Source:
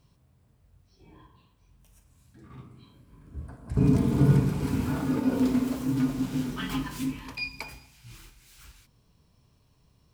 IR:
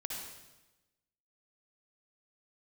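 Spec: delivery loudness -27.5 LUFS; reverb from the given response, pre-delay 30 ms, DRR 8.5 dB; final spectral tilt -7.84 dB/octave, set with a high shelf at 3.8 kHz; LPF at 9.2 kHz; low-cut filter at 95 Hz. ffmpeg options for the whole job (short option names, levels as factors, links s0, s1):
-filter_complex "[0:a]highpass=95,lowpass=9200,highshelf=f=3800:g=-6,asplit=2[s0][s1];[1:a]atrim=start_sample=2205,adelay=30[s2];[s1][s2]afir=irnorm=-1:irlink=0,volume=0.355[s3];[s0][s3]amix=inputs=2:normalize=0,volume=0.944"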